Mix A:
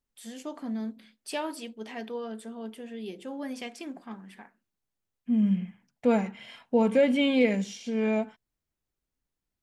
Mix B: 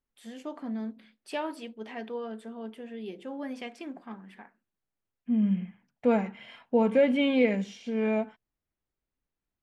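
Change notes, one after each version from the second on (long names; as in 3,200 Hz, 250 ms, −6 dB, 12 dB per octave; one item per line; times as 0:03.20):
master: add bass and treble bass −2 dB, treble −11 dB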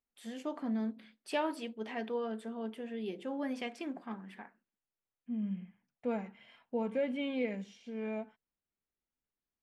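second voice −11.0 dB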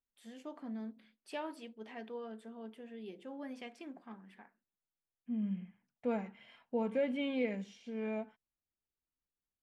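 first voice −8.0 dB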